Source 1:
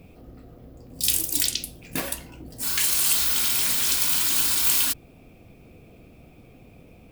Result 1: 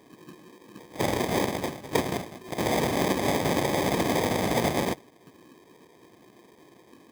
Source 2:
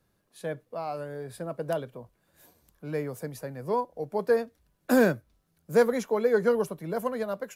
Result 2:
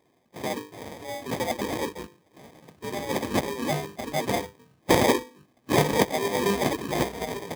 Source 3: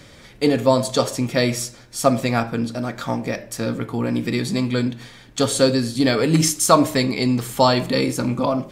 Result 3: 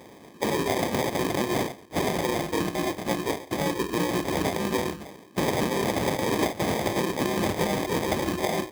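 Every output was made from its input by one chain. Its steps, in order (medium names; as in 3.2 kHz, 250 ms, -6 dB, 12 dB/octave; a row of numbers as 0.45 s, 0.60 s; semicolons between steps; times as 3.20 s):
rattle on loud lows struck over -23 dBFS, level -9 dBFS; Chebyshev band-stop 270–6500 Hz, order 2; in parallel at +1.5 dB: peak limiter -16.5 dBFS; on the sum: dynamic bell 210 Hz, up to -3 dB, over -33 dBFS, Q 1.7; spectral noise reduction 10 dB; saturation -8.5 dBFS; bass shelf 140 Hz +9.5 dB; hum notches 50/100/150/200/250/300/350/400/450/500 Hz; spectral gate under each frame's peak -15 dB weak; sample-rate reducer 1.4 kHz, jitter 0%; compression 10:1, threshold -33 dBFS; high-pass 110 Hz 12 dB/octave; normalise loudness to -27 LUFS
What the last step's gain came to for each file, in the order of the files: +12.5 dB, +19.0 dB, +12.0 dB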